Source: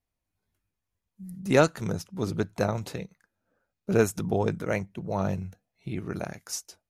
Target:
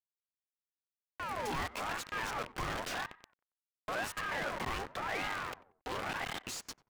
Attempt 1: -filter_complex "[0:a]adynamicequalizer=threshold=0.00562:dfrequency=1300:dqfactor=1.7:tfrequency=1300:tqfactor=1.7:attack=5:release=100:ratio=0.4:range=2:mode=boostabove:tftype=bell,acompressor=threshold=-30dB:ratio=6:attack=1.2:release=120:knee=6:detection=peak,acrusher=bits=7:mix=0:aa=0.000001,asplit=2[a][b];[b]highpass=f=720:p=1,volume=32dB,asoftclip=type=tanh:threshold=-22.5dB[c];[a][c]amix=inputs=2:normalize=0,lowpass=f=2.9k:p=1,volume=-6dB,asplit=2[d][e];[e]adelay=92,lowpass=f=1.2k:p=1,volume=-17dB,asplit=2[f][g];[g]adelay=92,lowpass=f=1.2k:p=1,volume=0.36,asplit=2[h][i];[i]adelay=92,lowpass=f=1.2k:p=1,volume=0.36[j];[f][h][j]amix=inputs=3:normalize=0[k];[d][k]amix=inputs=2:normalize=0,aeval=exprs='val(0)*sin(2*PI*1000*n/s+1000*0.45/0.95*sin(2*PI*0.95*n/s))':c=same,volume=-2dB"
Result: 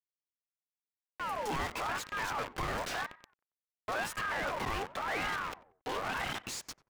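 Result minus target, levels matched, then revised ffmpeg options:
compressor: peak gain reduction -6.5 dB
-filter_complex "[0:a]adynamicequalizer=threshold=0.00562:dfrequency=1300:dqfactor=1.7:tfrequency=1300:tqfactor=1.7:attack=5:release=100:ratio=0.4:range=2:mode=boostabove:tftype=bell,acompressor=threshold=-38dB:ratio=6:attack=1.2:release=120:knee=6:detection=peak,acrusher=bits=7:mix=0:aa=0.000001,asplit=2[a][b];[b]highpass=f=720:p=1,volume=32dB,asoftclip=type=tanh:threshold=-22.5dB[c];[a][c]amix=inputs=2:normalize=0,lowpass=f=2.9k:p=1,volume=-6dB,asplit=2[d][e];[e]adelay=92,lowpass=f=1.2k:p=1,volume=-17dB,asplit=2[f][g];[g]adelay=92,lowpass=f=1.2k:p=1,volume=0.36,asplit=2[h][i];[i]adelay=92,lowpass=f=1.2k:p=1,volume=0.36[j];[f][h][j]amix=inputs=3:normalize=0[k];[d][k]amix=inputs=2:normalize=0,aeval=exprs='val(0)*sin(2*PI*1000*n/s+1000*0.45/0.95*sin(2*PI*0.95*n/s))':c=same,volume=-2dB"

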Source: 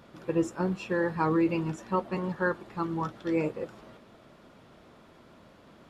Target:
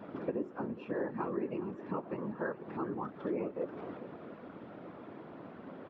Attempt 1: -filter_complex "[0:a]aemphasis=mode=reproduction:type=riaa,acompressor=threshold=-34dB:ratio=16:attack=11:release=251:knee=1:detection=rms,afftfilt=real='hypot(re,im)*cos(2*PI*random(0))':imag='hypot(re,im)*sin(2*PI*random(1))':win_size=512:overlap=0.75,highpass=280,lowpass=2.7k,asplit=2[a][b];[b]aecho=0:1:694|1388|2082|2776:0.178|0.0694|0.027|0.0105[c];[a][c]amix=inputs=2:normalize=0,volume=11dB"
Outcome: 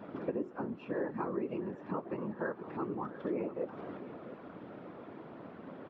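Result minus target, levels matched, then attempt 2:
echo 0.28 s late
-filter_complex "[0:a]aemphasis=mode=reproduction:type=riaa,acompressor=threshold=-34dB:ratio=16:attack=11:release=251:knee=1:detection=rms,afftfilt=real='hypot(re,im)*cos(2*PI*random(0))':imag='hypot(re,im)*sin(2*PI*random(1))':win_size=512:overlap=0.75,highpass=280,lowpass=2.7k,asplit=2[a][b];[b]aecho=0:1:414|828|1242|1656:0.178|0.0694|0.027|0.0105[c];[a][c]amix=inputs=2:normalize=0,volume=11dB"

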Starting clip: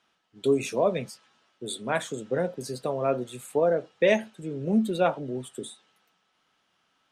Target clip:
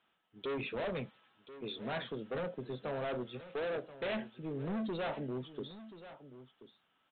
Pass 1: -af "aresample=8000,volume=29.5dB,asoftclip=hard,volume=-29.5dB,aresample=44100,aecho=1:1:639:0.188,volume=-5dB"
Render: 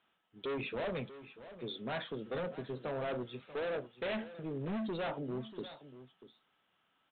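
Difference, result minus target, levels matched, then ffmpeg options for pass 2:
echo 0.392 s early
-af "aresample=8000,volume=29.5dB,asoftclip=hard,volume=-29.5dB,aresample=44100,aecho=1:1:1031:0.188,volume=-5dB"

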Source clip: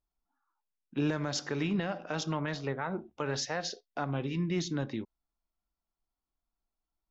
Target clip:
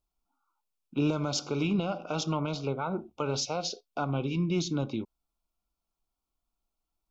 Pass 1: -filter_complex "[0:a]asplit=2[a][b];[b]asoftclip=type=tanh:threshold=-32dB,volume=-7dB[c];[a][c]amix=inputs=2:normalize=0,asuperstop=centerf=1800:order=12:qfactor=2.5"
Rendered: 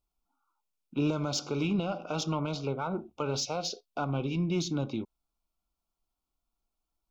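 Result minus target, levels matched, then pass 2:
soft clip: distortion +14 dB
-filter_complex "[0:a]asplit=2[a][b];[b]asoftclip=type=tanh:threshold=-21dB,volume=-7dB[c];[a][c]amix=inputs=2:normalize=0,asuperstop=centerf=1800:order=12:qfactor=2.5"

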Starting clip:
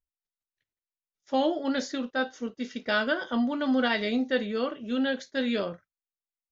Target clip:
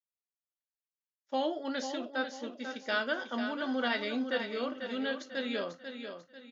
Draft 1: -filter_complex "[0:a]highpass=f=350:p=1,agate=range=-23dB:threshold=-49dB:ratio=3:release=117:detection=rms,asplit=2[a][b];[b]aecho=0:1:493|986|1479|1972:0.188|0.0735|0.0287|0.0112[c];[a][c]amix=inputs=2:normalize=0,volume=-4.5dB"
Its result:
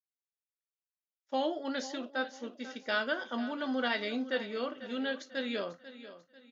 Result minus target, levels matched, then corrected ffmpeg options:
echo-to-direct -6.5 dB
-filter_complex "[0:a]highpass=f=350:p=1,agate=range=-23dB:threshold=-49dB:ratio=3:release=117:detection=rms,asplit=2[a][b];[b]aecho=0:1:493|986|1479|1972:0.398|0.155|0.0606|0.0236[c];[a][c]amix=inputs=2:normalize=0,volume=-4.5dB"

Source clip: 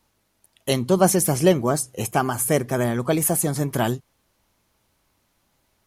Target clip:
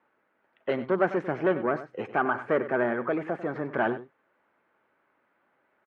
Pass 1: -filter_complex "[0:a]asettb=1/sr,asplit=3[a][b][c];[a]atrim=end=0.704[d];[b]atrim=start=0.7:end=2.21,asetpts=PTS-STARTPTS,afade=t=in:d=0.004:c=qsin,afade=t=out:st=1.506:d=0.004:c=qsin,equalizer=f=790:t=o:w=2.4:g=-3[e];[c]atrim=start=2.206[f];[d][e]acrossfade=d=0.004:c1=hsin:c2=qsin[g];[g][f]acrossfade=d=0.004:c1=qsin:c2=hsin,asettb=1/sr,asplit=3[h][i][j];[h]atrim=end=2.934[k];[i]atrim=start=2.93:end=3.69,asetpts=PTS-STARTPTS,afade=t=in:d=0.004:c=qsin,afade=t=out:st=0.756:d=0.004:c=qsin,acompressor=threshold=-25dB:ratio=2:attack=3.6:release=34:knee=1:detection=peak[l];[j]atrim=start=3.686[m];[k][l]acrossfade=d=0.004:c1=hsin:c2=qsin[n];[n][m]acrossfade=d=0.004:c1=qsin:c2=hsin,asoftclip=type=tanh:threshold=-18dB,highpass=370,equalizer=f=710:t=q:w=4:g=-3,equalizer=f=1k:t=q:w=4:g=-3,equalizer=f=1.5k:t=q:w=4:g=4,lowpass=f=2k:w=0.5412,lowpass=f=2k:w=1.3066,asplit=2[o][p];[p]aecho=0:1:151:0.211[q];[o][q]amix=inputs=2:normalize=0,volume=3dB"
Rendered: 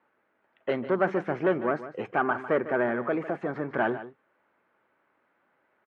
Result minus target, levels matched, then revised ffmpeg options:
echo 55 ms late
-filter_complex "[0:a]asettb=1/sr,asplit=3[a][b][c];[a]atrim=end=0.704[d];[b]atrim=start=0.7:end=2.21,asetpts=PTS-STARTPTS,afade=t=in:d=0.004:c=qsin,afade=t=out:st=1.506:d=0.004:c=qsin,equalizer=f=790:t=o:w=2.4:g=-3[e];[c]atrim=start=2.206[f];[d][e]acrossfade=d=0.004:c1=hsin:c2=qsin[g];[g][f]acrossfade=d=0.004:c1=qsin:c2=hsin,asettb=1/sr,asplit=3[h][i][j];[h]atrim=end=2.934[k];[i]atrim=start=2.93:end=3.69,asetpts=PTS-STARTPTS,afade=t=in:d=0.004:c=qsin,afade=t=out:st=0.756:d=0.004:c=qsin,acompressor=threshold=-25dB:ratio=2:attack=3.6:release=34:knee=1:detection=peak[l];[j]atrim=start=3.686[m];[k][l]acrossfade=d=0.004:c1=hsin:c2=qsin[n];[n][m]acrossfade=d=0.004:c1=qsin:c2=hsin,asoftclip=type=tanh:threshold=-18dB,highpass=370,equalizer=f=710:t=q:w=4:g=-3,equalizer=f=1k:t=q:w=4:g=-3,equalizer=f=1.5k:t=q:w=4:g=4,lowpass=f=2k:w=0.5412,lowpass=f=2k:w=1.3066,asplit=2[o][p];[p]aecho=0:1:96:0.211[q];[o][q]amix=inputs=2:normalize=0,volume=3dB"

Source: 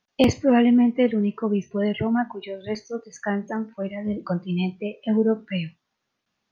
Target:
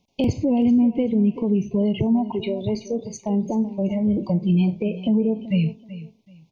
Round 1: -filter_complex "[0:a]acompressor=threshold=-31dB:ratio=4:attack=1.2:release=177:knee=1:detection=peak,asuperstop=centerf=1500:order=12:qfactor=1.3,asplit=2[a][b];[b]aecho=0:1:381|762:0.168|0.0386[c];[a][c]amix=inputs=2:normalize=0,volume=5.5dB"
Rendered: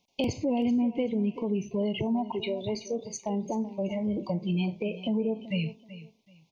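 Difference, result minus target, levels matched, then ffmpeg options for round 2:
500 Hz band +3.0 dB
-filter_complex "[0:a]acompressor=threshold=-31dB:ratio=4:attack=1.2:release=177:knee=1:detection=peak,asuperstop=centerf=1500:order=12:qfactor=1.3,lowshelf=f=400:g=12,asplit=2[a][b];[b]aecho=0:1:381|762:0.168|0.0386[c];[a][c]amix=inputs=2:normalize=0,volume=5.5dB"

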